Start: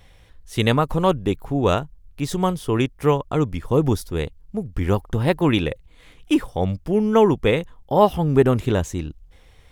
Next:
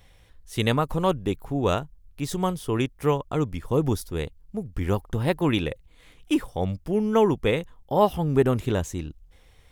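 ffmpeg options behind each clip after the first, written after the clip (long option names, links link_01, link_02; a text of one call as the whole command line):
ffmpeg -i in.wav -af "highshelf=frequency=7100:gain=4.5,volume=-4.5dB" out.wav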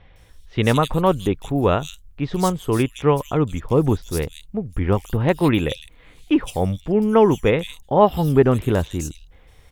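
ffmpeg -i in.wav -filter_complex "[0:a]acrossover=split=3400[link_01][link_02];[link_02]adelay=160[link_03];[link_01][link_03]amix=inputs=2:normalize=0,volume=5.5dB" out.wav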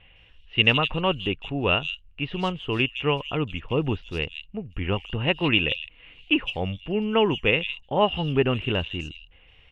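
ffmpeg -i in.wav -af "lowpass=frequency=2800:width_type=q:width=15,volume=-7.5dB" out.wav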